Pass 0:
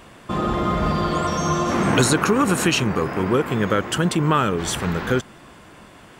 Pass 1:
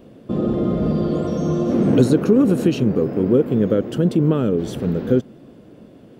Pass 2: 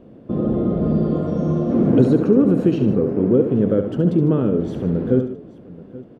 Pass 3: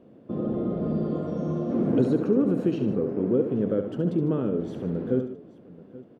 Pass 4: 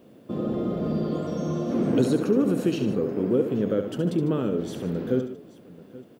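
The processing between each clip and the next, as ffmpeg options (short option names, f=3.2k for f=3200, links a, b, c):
-af "equalizer=f=125:t=o:w=1:g=7,equalizer=f=250:t=o:w=1:g=11,equalizer=f=500:t=o:w=1:g=11,equalizer=f=1k:t=o:w=1:g=-9,equalizer=f=2k:t=o:w=1:g=-7,equalizer=f=8k:t=o:w=1:g=-10,volume=-7dB"
-filter_complex "[0:a]lowpass=f=1.1k:p=1,asplit=2[a][b];[b]aecho=0:1:70|149|152|831:0.398|0.141|0.141|0.112[c];[a][c]amix=inputs=2:normalize=0"
-af "highpass=f=150:p=1,volume=-6.5dB"
-af "crystalizer=i=6.5:c=0"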